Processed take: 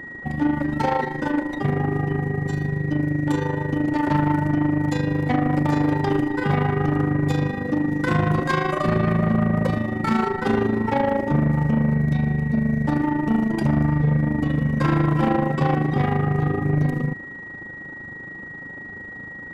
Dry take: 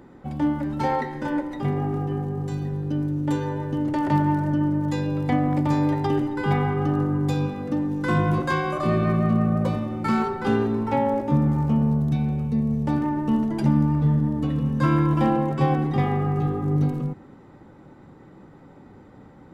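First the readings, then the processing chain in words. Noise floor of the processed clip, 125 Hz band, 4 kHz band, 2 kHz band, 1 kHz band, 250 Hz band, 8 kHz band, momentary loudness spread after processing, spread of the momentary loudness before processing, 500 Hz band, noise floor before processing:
-37 dBFS, +1.5 dB, +2.5 dB, +6.5 dB, +1.5 dB, +1.5 dB, no reading, 14 LU, 6 LU, +2.0 dB, -48 dBFS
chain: AM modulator 26 Hz, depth 60%; whistle 1.9 kHz -42 dBFS; saturation -21 dBFS, distortion -13 dB; trim +7.5 dB

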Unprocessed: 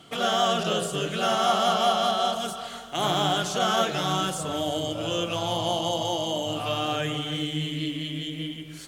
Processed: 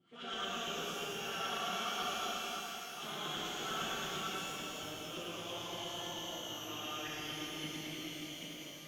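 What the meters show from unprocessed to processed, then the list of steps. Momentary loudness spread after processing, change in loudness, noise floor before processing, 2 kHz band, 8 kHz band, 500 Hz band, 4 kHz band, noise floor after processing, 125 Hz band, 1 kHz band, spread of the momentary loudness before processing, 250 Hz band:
6 LU, -13.5 dB, -40 dBFS, -9.0 dB, -9.5 dB, -18.0 dB, -12.0 dB, -48 dBFS, -19.5 dB, -16.0 dB, 9 LU, -16.0 dB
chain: amplifier tone stack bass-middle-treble 6-0-2; LFO band-pass saw up 8.9 Hz 320–2700 Hz; pitch-shifted reverb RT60 2.9 s, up +12 st, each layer -8 dB, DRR -9 dB; trim +7 dB

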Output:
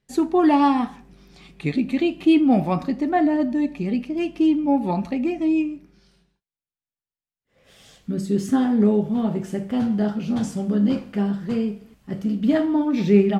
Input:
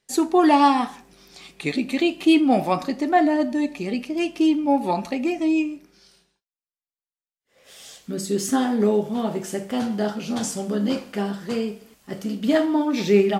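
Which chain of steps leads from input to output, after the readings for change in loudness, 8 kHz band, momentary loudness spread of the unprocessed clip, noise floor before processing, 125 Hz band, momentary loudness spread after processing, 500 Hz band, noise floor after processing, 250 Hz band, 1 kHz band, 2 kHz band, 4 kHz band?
+0.5 dB, under -10 dB, 12 LU, under -85 dBFS, +6.0 dB, 11 LU, -1.5 dB, under -85 dBFS, +2.0 dB, -3.5 dB, -4.0 dB, -6.5 dB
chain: tone controls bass +13 dB, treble -8 dB; trim -3.5 dB

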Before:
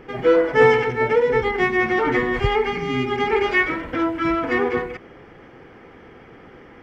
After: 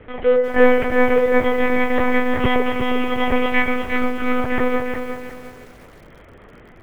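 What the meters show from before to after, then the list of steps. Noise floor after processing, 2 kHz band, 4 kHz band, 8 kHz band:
-45 dBFS, 0.0 dB, +0.5 dB, no reading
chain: monotone LPC vocoder at 8 kHz 250 Hz; bit-crushed delay 356 ms, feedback 35%, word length 7-bit, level -7 dB

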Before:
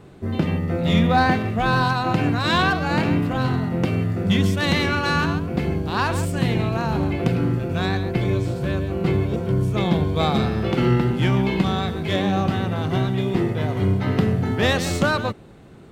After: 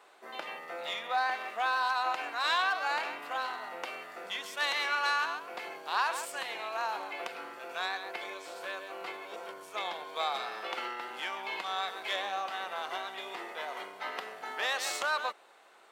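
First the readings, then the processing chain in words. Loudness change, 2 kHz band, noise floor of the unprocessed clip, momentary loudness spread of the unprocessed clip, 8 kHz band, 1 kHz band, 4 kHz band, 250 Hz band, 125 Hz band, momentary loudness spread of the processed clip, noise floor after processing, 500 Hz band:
-12.5 dB, -7.0 dB, -42 dBFS, 4 LU, -6.0 dB, -7.5 dB, -7.5 dB, -33.5 dB, under -40 dB, 12 LU, -58 dBFS, -16.5 dB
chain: compression, threshold -20 dBFS, peak gain reduction 7.5 dB; ladder high-pass 610 Hz, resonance 20%; trim +1.5 dB

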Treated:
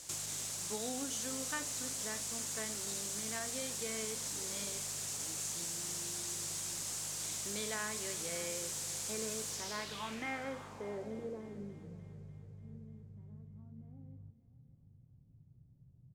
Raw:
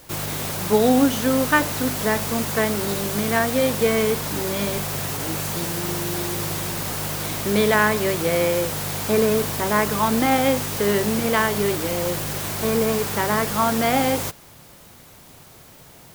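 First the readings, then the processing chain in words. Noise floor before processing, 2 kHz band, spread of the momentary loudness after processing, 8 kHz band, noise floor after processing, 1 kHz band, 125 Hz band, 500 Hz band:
-47 dBFS, -20.5 dB, 16 LU, -7.5 dB, -63 dBFS, -24.5 dB, -22.0 dB, -24.0 dB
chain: pre-emphasis filter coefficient 0.8; compression 4:1, threshold -36 dBFS, peak gain reduction 12.5 dB; low-pass sweep 7.3 kHz -> 130 Hz, 9.48–12.05 s; doubling 41 ms -12 dB; on a send: multi-head delay 295 ms, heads first and second, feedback 49%, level -19 dB

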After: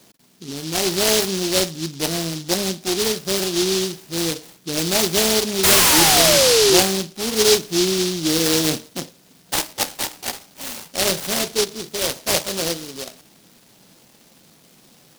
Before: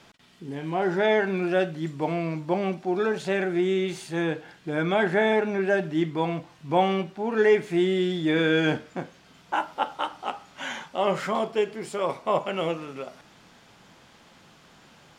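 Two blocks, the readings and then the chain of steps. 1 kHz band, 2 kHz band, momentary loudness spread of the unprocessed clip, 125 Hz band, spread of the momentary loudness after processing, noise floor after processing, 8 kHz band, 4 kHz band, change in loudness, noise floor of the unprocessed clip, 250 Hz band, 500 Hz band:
+1.5 dB, +4.0 dB, 13 LU, +2.5 dB, 17 LU, -53 dBFS, no reading, +18.0 dB, +8.0 dB, -55 dBFS, +3.0 dB, +3.0 dB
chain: painted sound fall, 5.63–6.80 s, 350–1300 Hz -18 dBFS; band-pass 140–2300 Hz; delay time shaken by noise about 4.4 kHz, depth 0.28 ms; trim +4 dB

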